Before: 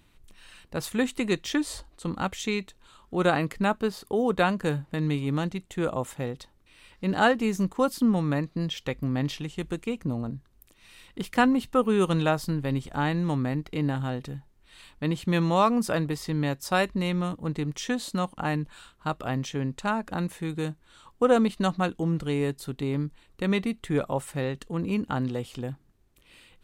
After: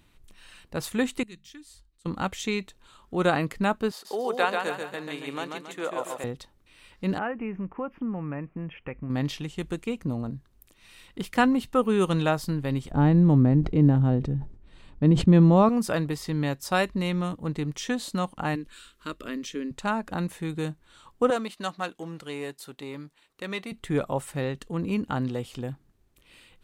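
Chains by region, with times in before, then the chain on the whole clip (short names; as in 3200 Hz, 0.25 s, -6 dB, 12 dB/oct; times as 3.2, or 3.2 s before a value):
1.23–2.06 passive tone stack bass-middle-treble 6-0-2 + notches 50/100/150/200/250 Hz
3.91–6.24 HPF 490 Hz + feedback echo 0.138 s, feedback 44%, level -4.5 dB
7.18–9.1 elliptic low-pass 2600 Hz + compressor 2:1, threshold -33 dBFS
12.91–15.69 LPF 7900 Hz + tilt shelf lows +10 dB, about 810 Hz + sustainer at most 110 dB/s
18.55–19.71 fixed phaser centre 320 Hz, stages 4 + mismatched tape noise reduction encoder only
21.3–23.72 half-wave gain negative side -3 dB + HPF 650 Hz 6 dB/oct
whole clip: dry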